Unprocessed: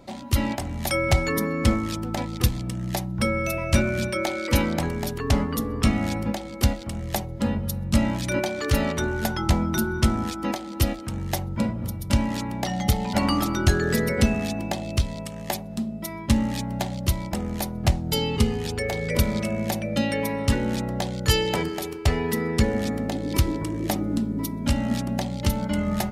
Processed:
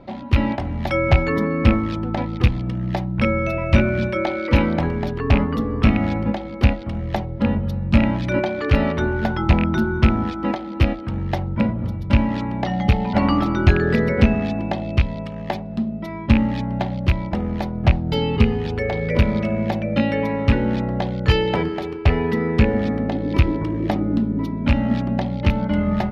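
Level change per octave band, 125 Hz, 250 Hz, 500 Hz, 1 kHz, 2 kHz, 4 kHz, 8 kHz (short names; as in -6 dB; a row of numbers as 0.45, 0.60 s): +5.5 dB, +5.0 dB, +4.5 dB, +4.0 dB, +3.5 dB, -2.0 dB, under -15 dB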